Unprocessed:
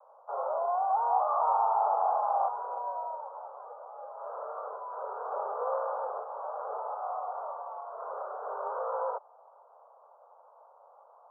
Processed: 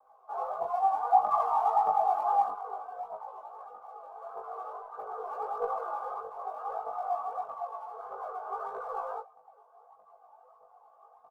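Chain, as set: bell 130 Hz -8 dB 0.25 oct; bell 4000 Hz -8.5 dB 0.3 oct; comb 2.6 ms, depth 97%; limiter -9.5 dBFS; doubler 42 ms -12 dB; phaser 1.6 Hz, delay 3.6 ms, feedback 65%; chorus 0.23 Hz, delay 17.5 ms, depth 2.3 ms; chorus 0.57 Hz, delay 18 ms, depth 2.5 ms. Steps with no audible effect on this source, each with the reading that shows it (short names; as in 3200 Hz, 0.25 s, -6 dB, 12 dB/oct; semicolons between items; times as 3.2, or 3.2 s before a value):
bell 130 Hz: input band starts at 380 Hz; bell 4000 Hz: input band ends at 1500 Hz; limiter -9.5 dBFS: input peak -12.0 dBFS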